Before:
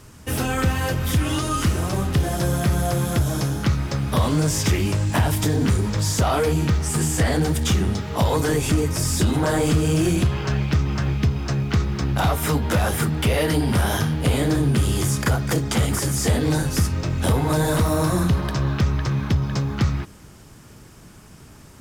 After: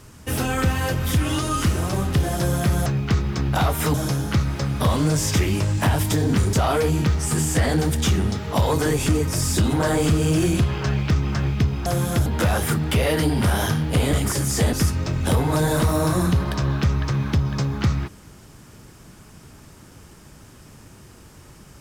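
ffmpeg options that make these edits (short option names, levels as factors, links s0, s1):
-filter_complex "[0:a]asplit=8[s0][s1][s2][s3][s4][s5][s6][s7];[s0]atrim=end=2.862[s8];[s1]atrim=start=11.488:end=12.572[s9];[s2]atrim=start=3.258:end=5.852[s10];[s3]atrim=start=6.158:end=11.492[s11];[s4]atrim=start=2.858:end=3.262[s12];[s5]atrim=start=12.568:end=14.442[s13];[s6]atrim=start=15.798:end=16.402[s14];[s7]atrim=start=16.698[s15];[s8][s9]acrossfade=d=0.004:c1=hsin:c2=hsin[s16];[s16][s10]acrossfade=d=0.004:c1=hsin:c2=hsin[s17];[s17][s11]acrossfade=d=0.004:c1=hsin:c2=hsin[s18];[s18][s12]acrossfade=d=0.004:c1=hsin:c2=hsin[s19];[s19][s13]acrossfade=d=0.004:c1=hsin:c2=hsin[s20];[s20][s14]acrossfade=d=0.004:c1=hsin:c2=hsin[s21];[s21][s15]acrossfade=d=0.004:c1=hsin:c2=hsin"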